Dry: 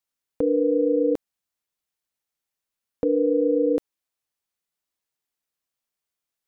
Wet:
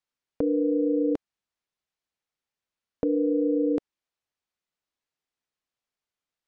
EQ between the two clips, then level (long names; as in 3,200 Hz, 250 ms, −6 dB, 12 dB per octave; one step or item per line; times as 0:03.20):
dynamic equaliser 510 Hz, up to −7 dB, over −36 dBFS, Q 3.9
high-frequency loss of the air 82 metres
0.0 dB